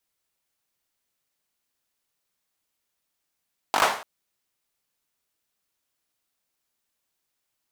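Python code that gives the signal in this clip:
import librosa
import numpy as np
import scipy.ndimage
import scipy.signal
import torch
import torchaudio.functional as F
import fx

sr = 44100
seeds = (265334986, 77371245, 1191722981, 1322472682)

y = fx.drum_clap(sr, seeds[0], length_s=0.29, bursts=5, spacing_ms=20, hz=900.0, decay_s=0.47)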